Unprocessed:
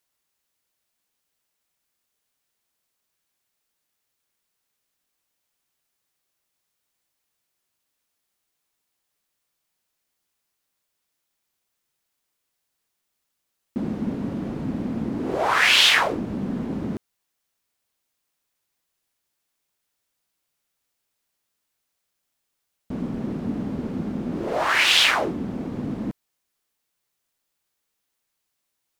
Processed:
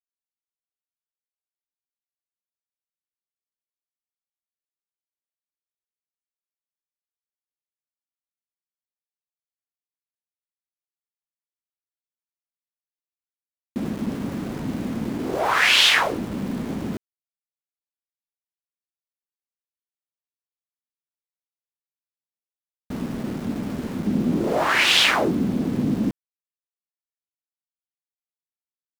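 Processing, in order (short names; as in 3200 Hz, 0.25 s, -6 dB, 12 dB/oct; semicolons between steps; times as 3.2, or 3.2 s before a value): 24.06–26.09 bell 210 Hz +7.5 dB 2.2 oct; sample gate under -34 dBFS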